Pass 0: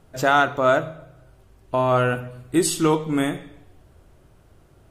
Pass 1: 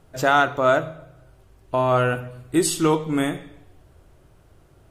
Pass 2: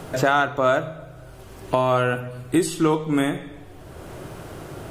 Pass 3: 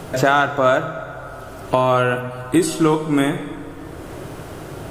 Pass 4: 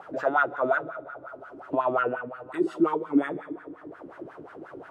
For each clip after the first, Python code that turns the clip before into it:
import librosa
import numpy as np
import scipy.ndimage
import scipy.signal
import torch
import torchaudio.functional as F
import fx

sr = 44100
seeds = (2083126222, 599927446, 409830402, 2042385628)

y1 = fx.peak_eq(x, sr, hz=220.0, db=-5.0, octaves=0.22)
y2 = fx.band_squash(y1, sr, depth_pct=70)
y3 = fx.rev_plate(y2, sr, seeds[0], rt60_s=4.8, hf_ratio=0.55, predelay_ms=0, drr_db=12.5)
y3 = F.gain(torch.from_numpy(y3), 3.5).numpy()
y4 = fx.wah_lfo(y3, sr, hz=5.6, low_hz=280.0, high_hz=1600.0, q=4.2)